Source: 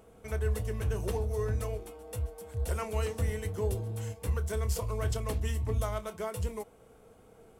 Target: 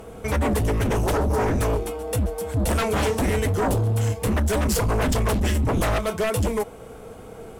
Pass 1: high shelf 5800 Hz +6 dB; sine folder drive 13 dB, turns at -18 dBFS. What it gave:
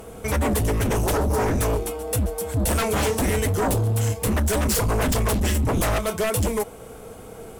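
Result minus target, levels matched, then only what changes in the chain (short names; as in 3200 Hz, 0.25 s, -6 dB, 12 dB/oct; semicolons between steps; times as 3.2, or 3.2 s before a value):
8000 Hz band +4.5 dB
change: high shelf 5800 Hz -2.5 dB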